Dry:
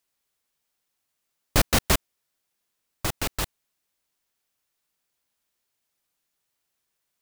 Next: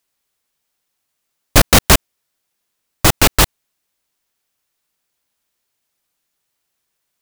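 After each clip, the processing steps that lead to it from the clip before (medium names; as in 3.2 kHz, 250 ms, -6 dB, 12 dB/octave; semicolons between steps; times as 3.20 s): waveshaping leveller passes 3; loudness maximiser +12 dB; trim -1 dB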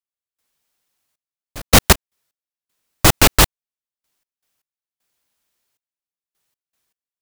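trance gate "..xxxx...x.x" 78 bpm -24 dB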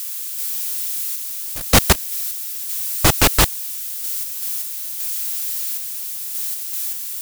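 zero-crossing glitches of -18.5 dBFS; trim -2.5 dB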